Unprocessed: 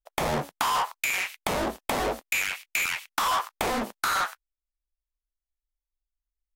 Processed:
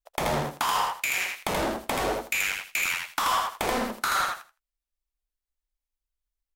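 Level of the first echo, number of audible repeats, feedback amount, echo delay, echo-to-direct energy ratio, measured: -3.5 dB, 3, 18%, 81 ms, -3.5 dB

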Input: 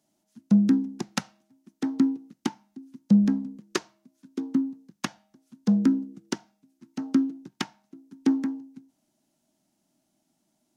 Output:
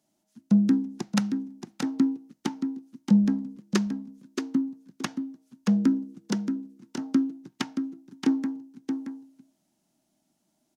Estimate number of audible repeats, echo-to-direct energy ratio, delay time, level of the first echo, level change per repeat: 1, -7.0 dB, 626 ms, -7.0 dB, no regular repeats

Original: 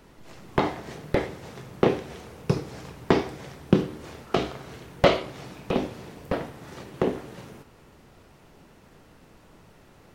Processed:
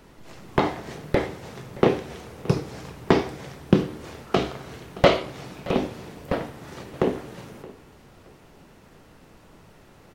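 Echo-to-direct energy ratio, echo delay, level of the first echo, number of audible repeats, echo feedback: -19.5 dB, 622 ms, -20.0 dB, 2, 29%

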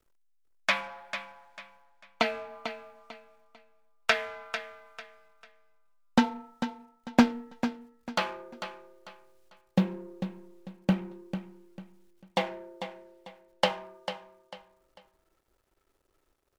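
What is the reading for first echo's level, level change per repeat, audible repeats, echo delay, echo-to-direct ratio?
-10.0 dB, -10.5 dB, 3, 446 ms, -9.5 dB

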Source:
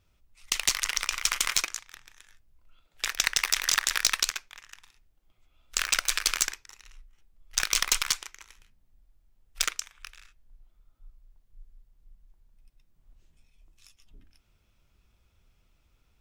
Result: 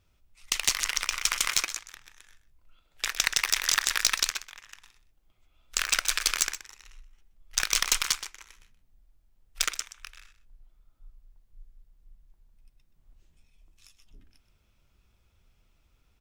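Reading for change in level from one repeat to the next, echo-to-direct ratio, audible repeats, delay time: no regular repeats, -14.0 dB, 1, 126 ms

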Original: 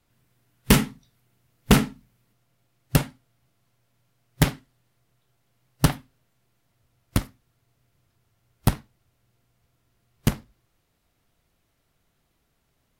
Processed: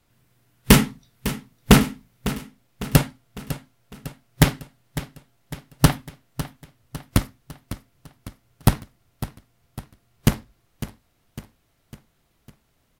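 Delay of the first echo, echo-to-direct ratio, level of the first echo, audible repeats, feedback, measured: 553 ms, -12.0 dB, -13.5 dB, 4, 51%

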